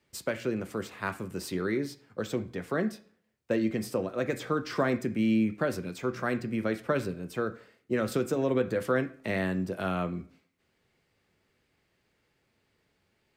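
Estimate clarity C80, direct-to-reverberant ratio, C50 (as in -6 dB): 19.5 dB, 7.5 dB, 15.0 dB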